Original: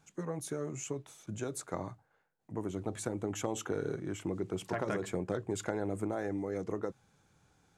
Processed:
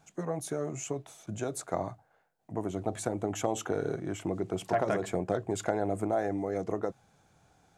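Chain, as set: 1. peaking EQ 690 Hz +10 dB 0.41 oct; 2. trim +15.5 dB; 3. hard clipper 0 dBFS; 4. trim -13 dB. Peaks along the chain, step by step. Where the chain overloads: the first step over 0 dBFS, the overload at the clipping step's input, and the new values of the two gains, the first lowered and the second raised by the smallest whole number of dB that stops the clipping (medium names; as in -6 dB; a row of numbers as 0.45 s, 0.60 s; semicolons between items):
-17.0 dBFS, -1.5 dBFS, -1.5 dBFS, -14.5 dBFS; nothing clips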